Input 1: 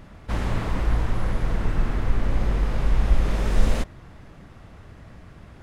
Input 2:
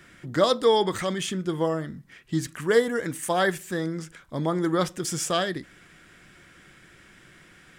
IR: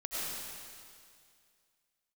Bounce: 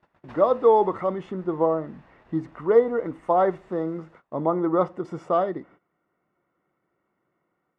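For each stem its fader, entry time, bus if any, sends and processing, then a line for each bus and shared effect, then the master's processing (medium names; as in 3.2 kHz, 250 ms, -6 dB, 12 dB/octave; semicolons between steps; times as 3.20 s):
-1.5 dB, 0.00 s, send -16 dB, comb filter that takes the minimum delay 1.1 ms; compression 8:1, threshold -28 dBFS, peak gain reduction 17 dB; auto duck -15 dB, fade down 0.95 s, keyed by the second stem
+1.5 dB, 0.00 s, no send, level rider gain up to 5 dB; Savitzky-Golay filter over 65 samples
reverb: on, RT60 2.2 s, pre-delay 60 ms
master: gate -44 dBFS, range -19 dB; band-pass filter 1 kHz, Q 0.54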